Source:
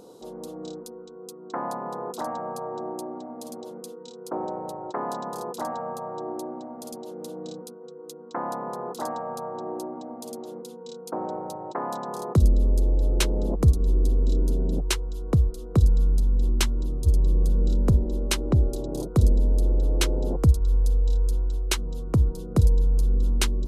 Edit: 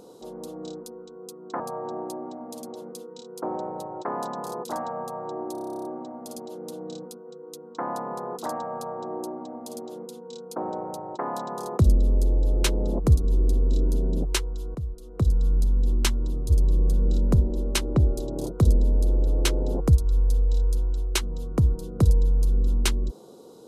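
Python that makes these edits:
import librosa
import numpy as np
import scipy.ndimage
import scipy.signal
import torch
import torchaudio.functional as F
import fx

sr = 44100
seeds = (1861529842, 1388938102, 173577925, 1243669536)

y = fx.edit(x, sr, fx.cut(start_s=1.6, length_s=0.89),
    fx.stutter(start_s=6.41, slice_s=0.03, count=12),
    fx.fade_in_from(start_s=15.31, length_s=0.85, floor_db=-14.5), tone=tone)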